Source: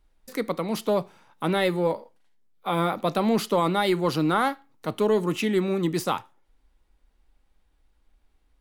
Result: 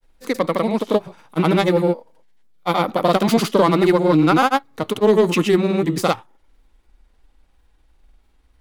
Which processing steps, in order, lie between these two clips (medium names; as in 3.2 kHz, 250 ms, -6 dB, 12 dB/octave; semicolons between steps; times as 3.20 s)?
self-modulated delay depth 0.07 ms; granulator 100 ms, pitch spread up and down by 0 st; trim +9 dB